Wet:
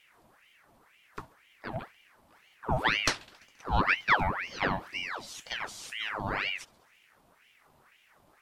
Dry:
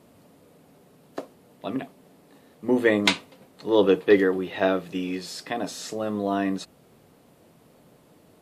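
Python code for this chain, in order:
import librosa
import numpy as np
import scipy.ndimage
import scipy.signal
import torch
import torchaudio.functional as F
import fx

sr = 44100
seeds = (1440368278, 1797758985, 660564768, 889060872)

y = fx.echo_thinned(x, sr, ms=68, feedback_pct=73, hz=700.0, wet_db=-23.0)
y = fx.ring_lfo(y, sr, carrier_hz=1500.0, swing_pct=75, hz=2.0)
y = y * librosa.db_to_amplitude(-4.5)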